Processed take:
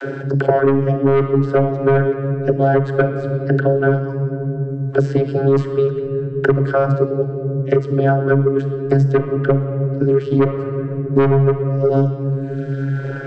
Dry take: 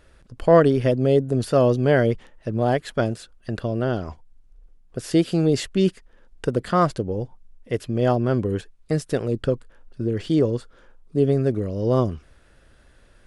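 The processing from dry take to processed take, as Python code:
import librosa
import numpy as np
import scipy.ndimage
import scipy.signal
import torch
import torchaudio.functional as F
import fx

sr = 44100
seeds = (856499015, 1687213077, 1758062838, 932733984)

p1 = fx.dereverb_blind(x, sr, rt60_s=1.3)
p2 = fx.rider(p1, sr, range_db=10, speed_s=2.0)
p3 = p1 + (p2 * librosa.db_to_amplitude(0.0))
p4 = fx.vocoder(p3, sr, bands=32, carrier='saw', carrier_hz=137.0)
p5 = fx.small_body(p4, sr, hz=(390.0, 1500.0), ring_ms=20, db=16)
p6 = 10.0 ** (-2.0 / 20.0) * np.tanh(p5 / 10.0 ** (-2.0 / 20.0))
p7 = fx.room_shoebox(p6, sr, seeds[0], volume_m3=790.0, walls='mixed', distance_m=0.72)
p8 = fx.band_squash(p7, sr, depth_pct=100)
y = p8 * librosa.db_to_amplitude(-3.0)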